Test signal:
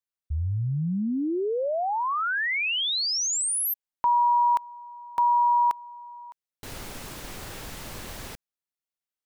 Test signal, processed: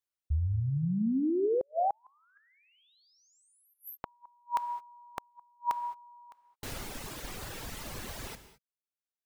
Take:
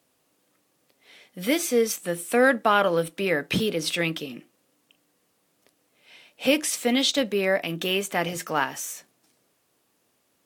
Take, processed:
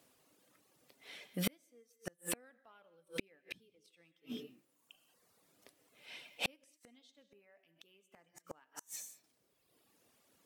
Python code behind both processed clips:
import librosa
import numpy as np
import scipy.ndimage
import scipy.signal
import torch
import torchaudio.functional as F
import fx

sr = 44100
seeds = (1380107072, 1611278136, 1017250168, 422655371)

y = fx.dereverb_blind(x, sr, rt60_s=1.2)
y = fx.rev_gated(y, sr, seeds[0], gate_ms=240, shape='flat', drr_db=11.0)
y = fx.gate_flip(y, sr, shuts_db=-21.0, range_db=-42)